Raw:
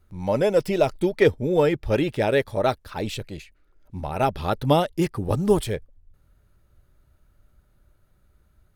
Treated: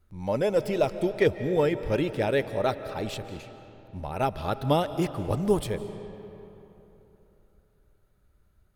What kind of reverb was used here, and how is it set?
algorithmic reverb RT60 3.3 s, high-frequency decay 0.6×, pre-delay 115 ms, DRR 11.5 dB; trim -4.5 dB

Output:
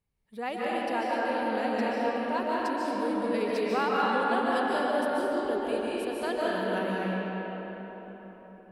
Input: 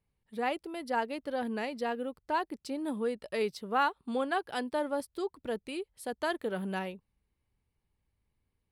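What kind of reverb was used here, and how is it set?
algorithmic reverb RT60 4.6 s, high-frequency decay 0.55×, pre-delay 105 ms, DRR -7 dB; trim -2.5 dB

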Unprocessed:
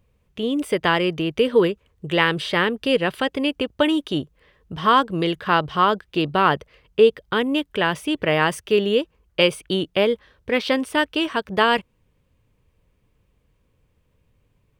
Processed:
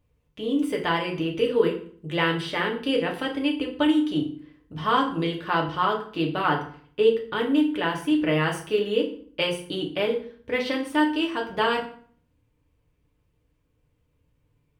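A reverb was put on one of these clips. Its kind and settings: FDN reverb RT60 0.5 s, low-frequency decay 1.35×, high-frequency decay 0.8×, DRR -0.5 dB; trim -8.5 dB

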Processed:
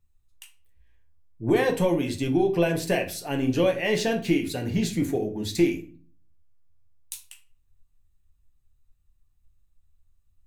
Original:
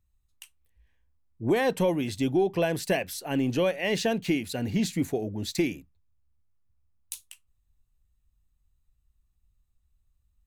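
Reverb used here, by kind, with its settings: simulated room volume 31 m³, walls mixed, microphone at 0.36 m

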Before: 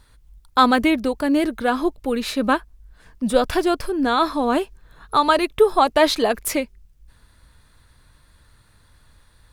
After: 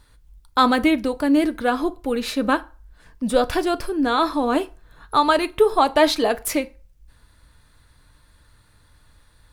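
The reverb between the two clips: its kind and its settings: FDN reverb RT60 0.37 s, low-frequency decay 0.75×, high-frequency decay 0.75×, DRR 12 dB; trim -1 dB

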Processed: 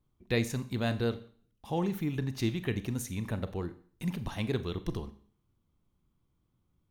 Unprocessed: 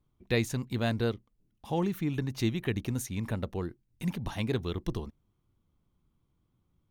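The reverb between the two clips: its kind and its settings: Schroeder reverb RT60 0.49 s, combs from 30 ms, DRR 12 dB; trim -1.5 dB

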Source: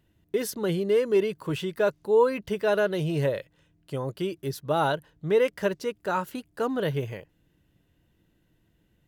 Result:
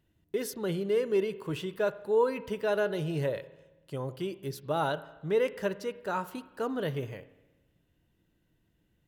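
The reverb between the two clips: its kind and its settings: spring tank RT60 1.1 s, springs 31/55 ms, chirp 60 ms, DRR 14.5 dB; trim -5 dB

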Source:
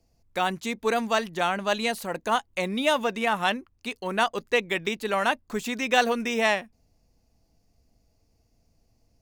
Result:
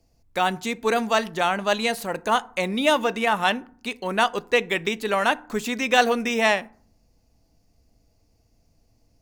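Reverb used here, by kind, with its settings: FDN reverb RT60 0.51 s, low-frequency decay 1.5×, high-frequency decay 0.5×, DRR 16.5 dB; trim +3 dB

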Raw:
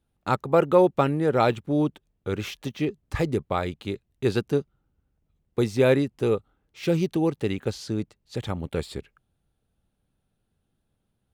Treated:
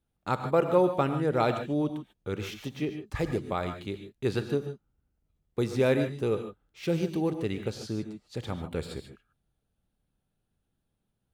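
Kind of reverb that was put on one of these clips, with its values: gated-style reverb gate 170 ms rising, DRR 7.5 dB; trim -5 dB

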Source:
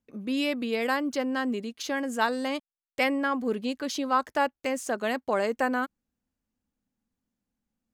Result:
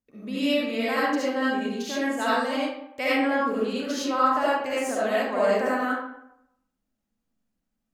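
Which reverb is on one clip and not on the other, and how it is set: algorithmic reverb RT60 0.8 s, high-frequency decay 0.6×, pre-delay 30 ms, DRR -9 dB; trim -6 dB

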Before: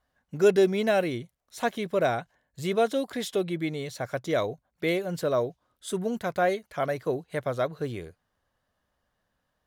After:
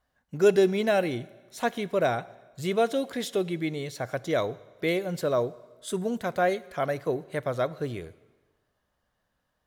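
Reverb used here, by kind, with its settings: plate-style reverb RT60 1.3 s, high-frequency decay 0.95×, DRR 18 dB

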